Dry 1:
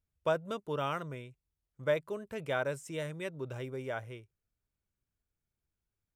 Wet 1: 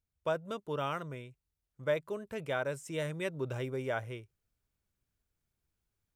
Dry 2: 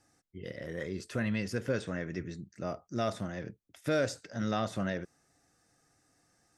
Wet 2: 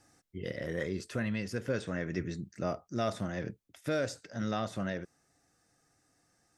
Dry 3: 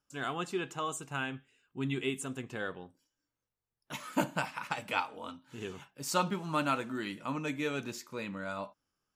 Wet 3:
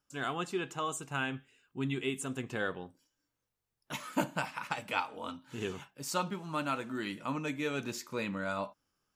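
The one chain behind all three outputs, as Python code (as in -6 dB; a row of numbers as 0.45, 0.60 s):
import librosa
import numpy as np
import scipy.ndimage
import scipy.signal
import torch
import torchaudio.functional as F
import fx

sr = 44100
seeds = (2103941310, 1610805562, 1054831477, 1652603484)

y = fx.rider(x, sr, range_db=4, speed_s=0.5)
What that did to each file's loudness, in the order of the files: 0.0, -0.5, -0.5 LU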